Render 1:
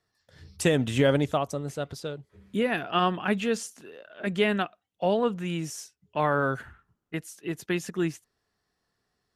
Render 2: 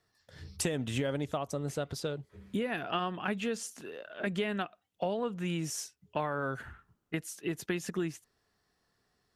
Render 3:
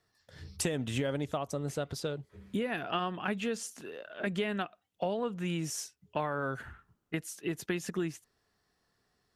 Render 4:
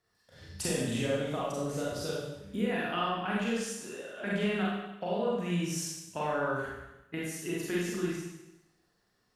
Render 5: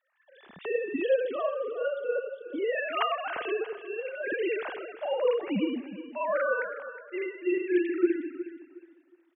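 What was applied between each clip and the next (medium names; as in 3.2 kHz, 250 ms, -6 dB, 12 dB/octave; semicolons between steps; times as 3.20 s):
compression 6:1, threshold -32 dBFS, peak gain reduction 14 dB; trim +2 dB
no audible change
Schroeder reverb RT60 0.95 s, combs from 31 ms, DRR -6 dB; trim -5 dB
formants replaced by sine waves; feedback delay 364 ms, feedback 26%, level -13.5 dB; trim +3 dB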